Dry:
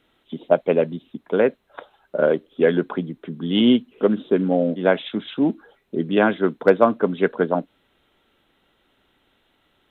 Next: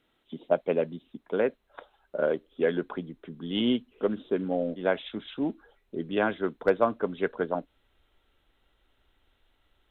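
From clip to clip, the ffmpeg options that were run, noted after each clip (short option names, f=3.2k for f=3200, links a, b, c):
-af "asubboost=boost=7.5:cutoff=63,volume=-7.5dB"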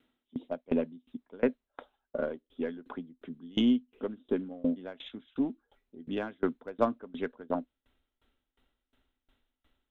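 -af "aeval=exprs='0.335*(cos(1*acos(clip(val(0)/0.335,-1,1)))-cos(1*PI/2))+0.00596*(cos(8*acos(clip(val(0)/0.335,-1,1)))-cos(8*PI/2))':c=same,equalizer=f=250:w=5.7:g=12.5,aeval=exprs='val(0)*pow(10,-26*if(lt(mod(2.8*n/s,1),2*abs(2.8)/1000),1-mod(2.8*n/s,1)/(2*abs(2.8)/1000),(mod(2.8*n/s,1)-2*abs(2.8)/1000)/(1-2*abs(2.8)/1000))/20)':c=same"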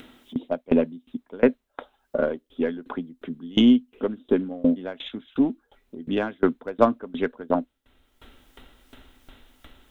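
-af "acompressor=mode=upward:threshold=-43dB:ratio=2.5,volume=9dB"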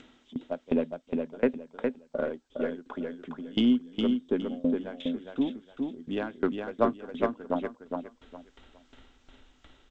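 -af "aecho=1:1:411|822|1233:0.596|0.143|0.0343,volume=-7dB" -ar 16000 -c:a g722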